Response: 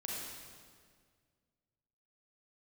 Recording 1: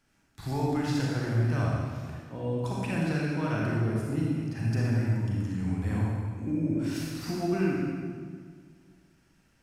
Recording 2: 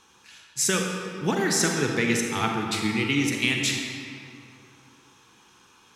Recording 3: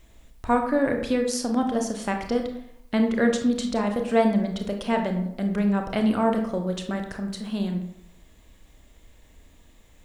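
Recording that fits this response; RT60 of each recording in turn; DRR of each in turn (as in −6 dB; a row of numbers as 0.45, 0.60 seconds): 1; 1.9, 2.7, 0.75 seconds; −4.5, 1.0, 3.5 decibels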